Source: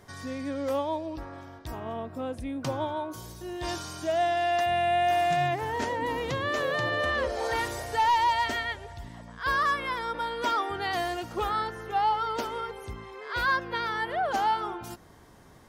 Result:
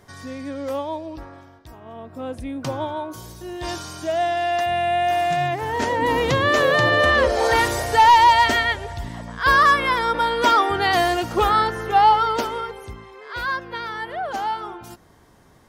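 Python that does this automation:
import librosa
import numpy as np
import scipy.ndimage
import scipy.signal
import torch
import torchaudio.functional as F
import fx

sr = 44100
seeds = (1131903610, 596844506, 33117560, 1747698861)

y = fx.gain(x, sr, db=fx.line((1.23, 2.0), (1.78, -6.5), (2.3, 4.0), (5.52, 4.0), (6.17, 11.0), (12.12, 11.0), (13.11, 0.5)))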